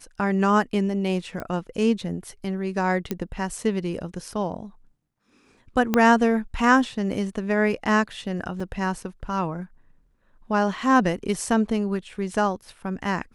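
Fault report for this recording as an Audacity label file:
1.400000	1.400000	pop -19 dBFS
3.110000	3.110000	pop -12 dBFS
5.940000	5.940000	pop -7 dBFS
8.600000	8.600000	dropout 4 ms

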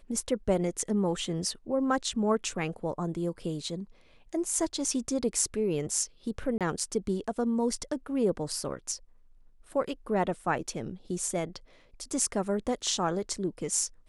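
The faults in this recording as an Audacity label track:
6.580000	6.610000	dropout 27 ms

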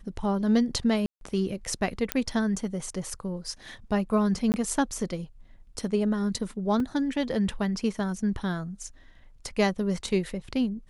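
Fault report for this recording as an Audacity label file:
1.060000	1.210000	dropout 152 ms
2.120000	2.120000	pop -8 dBFS
4.520000	4.540000	dropout 19 ms
6.800000	6.800000	dropout 2.3 ms

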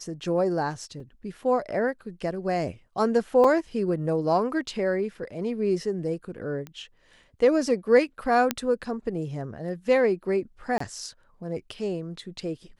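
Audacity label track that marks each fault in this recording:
1.000000	1.000000	dropout 3.8 ms
3.440000	3.440000	dropout 4.3 ms
6.670000	6.670000	pop -24 dBFS
8.510000	8.510000	pop -8 dBFS
10.780000	10.800000	dropout 24 ms

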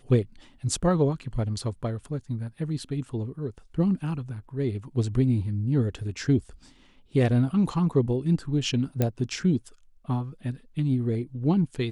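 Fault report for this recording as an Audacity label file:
9.020000	9.020000	pop -11 dBFS

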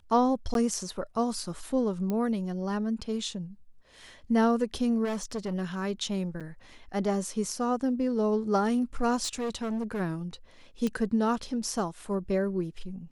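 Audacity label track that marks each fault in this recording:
0.540000	0.550000	dropout 12 ms
2.100000	2.100000	pop -19 dBFS
5.040000	5.540000	clipped -28 dBFS
6.400000	6.410000	dropout 6.8 ms
9.230000	10.010000	clipped -28 dBFS
10.870000	10.870000	pop -18 dBFS

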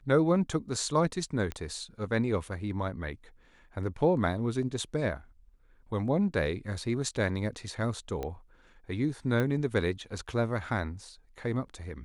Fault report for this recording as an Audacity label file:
1.520000	1.520000	pop -21 dBFS
8.230000	8.230000	pop -22 dBFS
9.400000	9.400000	pop -18 dBFS

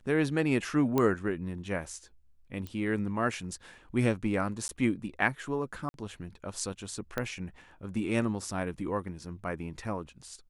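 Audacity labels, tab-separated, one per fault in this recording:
0.980000	0.980000	pop -14 dBFS
2.670000	2.670000	pop -26 dBFS
4.680000	4.690000	dropout 11 ms
5.890000	5.940000	dropout 51 ms
7.180000	7.180000	pop -17 dBFS

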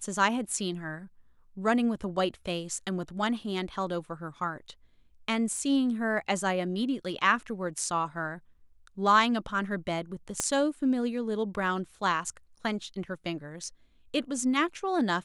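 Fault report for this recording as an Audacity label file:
5.570000	5.570000	dropout 2.2 ms
10.400000	10.400000	pop -13 dBFS

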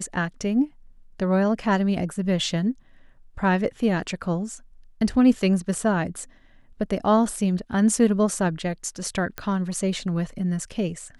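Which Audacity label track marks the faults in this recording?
9.380000	9.380000	pop -14 dBFS

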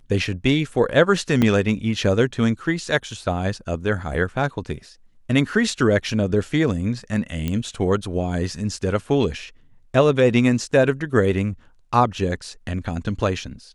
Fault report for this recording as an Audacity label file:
1.420000	1.420000	dropout 4.1 ms
7.480000	7.480000	pop -12 dBFS

